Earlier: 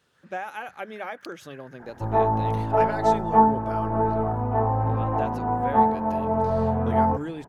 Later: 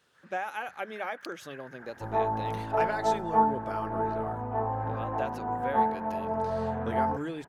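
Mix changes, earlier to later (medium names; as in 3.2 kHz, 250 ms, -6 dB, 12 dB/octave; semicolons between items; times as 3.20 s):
first sound +3.5 dB; second sound -5.5 dB; master: add bass shelf 240 Hz -6.5 dB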